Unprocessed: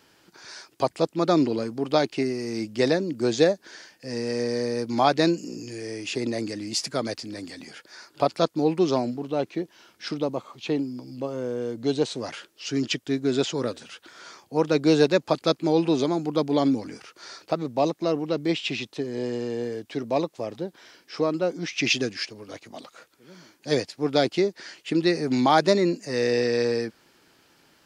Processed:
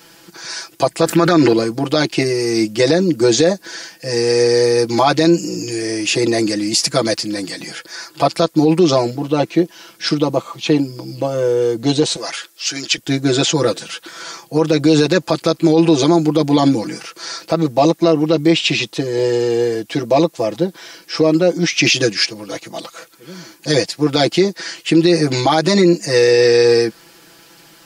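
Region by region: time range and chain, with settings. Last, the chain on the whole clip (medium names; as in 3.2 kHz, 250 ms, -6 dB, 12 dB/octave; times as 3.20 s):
1.01–1.53 s: peaking EQ 1.6 kHz +13 dB + level flattener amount 50%
12.16–12.98 s: high-pass 1.1 kHz 6 dB/octave + band-stop 2.9 kHz, Q 14
whole clip: treble shelf 6.3 kHz +8 dB; comb 6 ms, depth 97%; loudness maximiser +12 dB; trim -2.5 dB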